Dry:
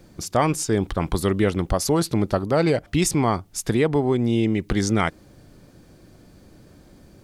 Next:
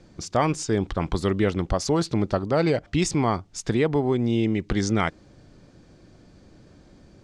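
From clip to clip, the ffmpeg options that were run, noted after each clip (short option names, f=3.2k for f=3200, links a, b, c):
-af "lowpass=f=7.3k:w=0.5412,lowpass=f=7.3k:w=1.3066,volume=-2dB"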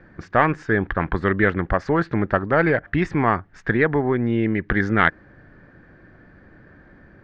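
-af "lowpass=f=1.7k:t=q:w=6.1,aeval=exprs='0.708*(cos(1*acos(clip(val(0)/0.708,-1,1)))-cos(1*PI/2))+0.1*(cos(2*acos(clip(val(0)/0.708,-1,1)))-cos(2*PI/2))':c=same,volume=1.5dB"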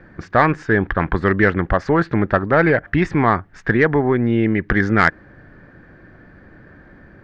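-af "asoftclip=type=tanh:threshold=-4.5dB,volume=4dB"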